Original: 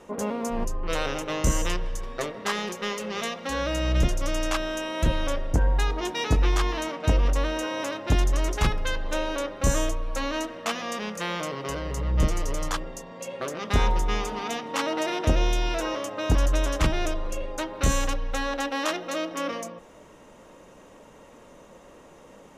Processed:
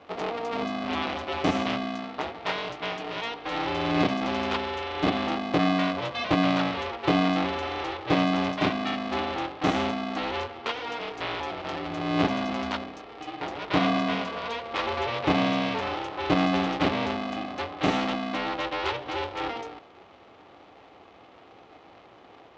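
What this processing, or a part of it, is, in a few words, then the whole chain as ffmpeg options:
ring modulator pedal into a guitar cabinet: -af "aeval=exprs='val(0)*sgn(sin(2*PI*230*n/s))':channel_layout=same,highpass=110,equalizer=frequency=150:width_type=q:width=4:gain=-8,equalizer=frequency=220:width_type=q:width=4:gain=-9,equalizer=frequency=1600:width_type=q:width=4:gain=-5,lowpass=frequency=4100:width=0.5412,lowpass=frequency=4100:width=1.3066"

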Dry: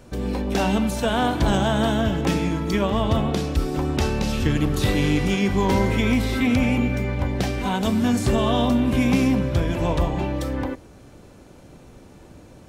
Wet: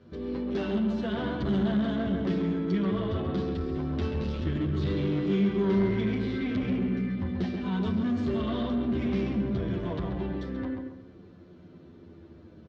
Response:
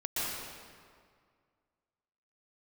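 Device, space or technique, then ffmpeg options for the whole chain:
barber-pole flanger into a guitar amplifier: -filter_complex "[0:a]asplit=2[link_01][link_02];[link_02]adelay=134,lowpass=frequency=2400:poles=1,volume=-5dB,asplit=2[link_03][link_04];[link_04]adelay=134,lowpass=frequency=2400:poles=1,volume=0.35,asplit=2[link_05][link_06];[link_06]adelay=134,lowpass=frequency=2400:poles=1,volume=0.35,asplit=2[link_07][link_08];[link_08]adelay=134,lowpass=frequency=2400:poles=1,volume=0.35[link_09];[link_01][link_03][link_05][link_07][link_09]amix=inputs=5:normalize=0,asplit=2[link_10][link_11];[link_11]adelay=9.4,afreqshift=-0.25[link_12];[link_10][link_12]amix=inputs=2:normalize=1,asoftclip=type=tanh:threshold=-20.5dB,highpass=76,equalizer=frequency=82:width_type=q:width=4:gain=8,equalizer=frequency=190:width_type=q:width=4:gain=9,equalizer=frequency=370:width_type=q:width=4:gain=9,equalizer=frequency=550:width_type=q:width=4:gain=-3,equalizer=frequency=840:width_type=q:width=4:gain=-8,equalizer=frequency=2500:width_type=q:width=4:gain=-6,lowpass=frequency=4200:width=0.5412,lowpass=frequency=4200:width=1.3066,volume=-5.5dB"

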